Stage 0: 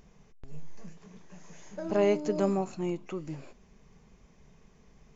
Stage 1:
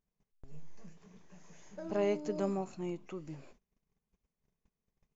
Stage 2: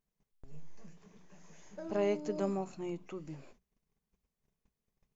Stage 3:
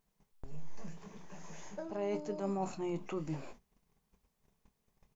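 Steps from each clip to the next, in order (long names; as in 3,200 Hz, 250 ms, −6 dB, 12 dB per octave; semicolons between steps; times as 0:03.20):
noise gate −52 dBFS, range −24 dB; level −6.5 dB
mains-hum notches 60/120/180 Hz
parametric band 890 Hz +5 dB 0.77 octaves; reversed playback; downward compressor 12 to 1, threshold −40 dBFS, peak gain reduction 15.5 dB; reversed playback; double-tracking delay 25 ms −13 dB; level +7 dB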